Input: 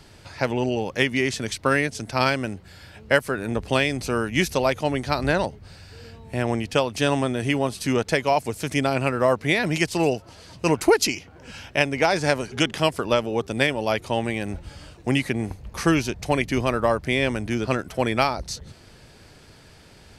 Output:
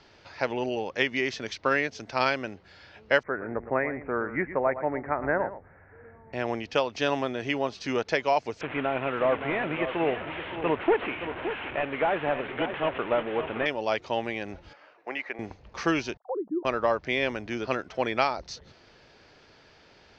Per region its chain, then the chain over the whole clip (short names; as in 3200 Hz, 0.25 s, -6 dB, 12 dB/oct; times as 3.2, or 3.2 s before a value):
3.23–6.33 steep low-pass 2100 Hz 72 dB/oct + echo 0.115 s -12.5 dB
8.61–13.66 delta modulation 16 kbps, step -26 dBFS + echo 0.57 s -9.5 dB
14.73–15.39 median filter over 5 samples + HPF 560 Hz + band shelf 4900 Hz -11.5 dB
16.17–16.65 sine-wave speech + Gaussian blur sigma 12 samples
whole clip: steep low-pass 6300 Hz 48 dB/oct; tone controls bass -11 dB, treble -5 dB; gain -3 dB